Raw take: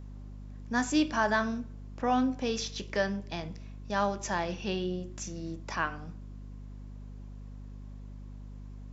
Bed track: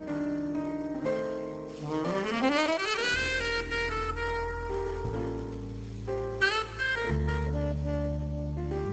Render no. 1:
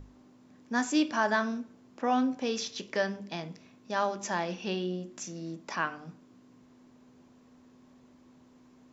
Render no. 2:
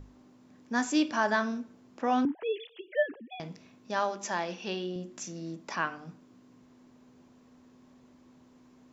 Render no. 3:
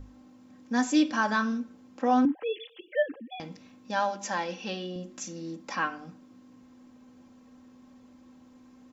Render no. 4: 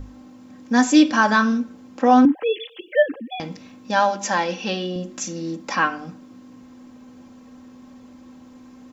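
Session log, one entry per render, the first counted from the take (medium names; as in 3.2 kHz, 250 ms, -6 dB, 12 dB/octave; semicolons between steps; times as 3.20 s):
hum notches 50/100/150/200 Hz
2.25–3.40 s: formants replaced by sine waves; 3.99–4.96 s: bass shelf 160 Hz -11 dB
peaking EQ 110 Hz +8 dB 0.49 oct; comb 3.8 ms, depth 68%
trim +9.5 dB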